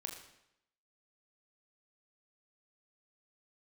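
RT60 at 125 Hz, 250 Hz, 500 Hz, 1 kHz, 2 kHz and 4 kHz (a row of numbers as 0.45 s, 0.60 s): 0.80 s, 0.85 s, 0.80 s, 0.80 s, 0.80 s, 0.75 s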